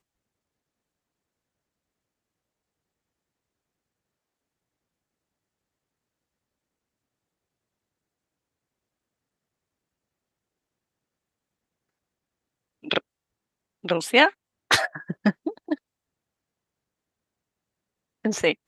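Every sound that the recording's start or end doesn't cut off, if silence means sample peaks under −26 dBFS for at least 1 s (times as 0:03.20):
0:12.91–0:15.74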